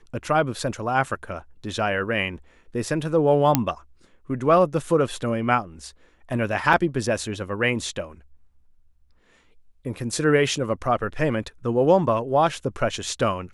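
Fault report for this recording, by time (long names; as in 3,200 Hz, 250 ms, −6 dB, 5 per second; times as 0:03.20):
0:03.55: click −2 dBFS
0:06.73: drop-out 4.2 ms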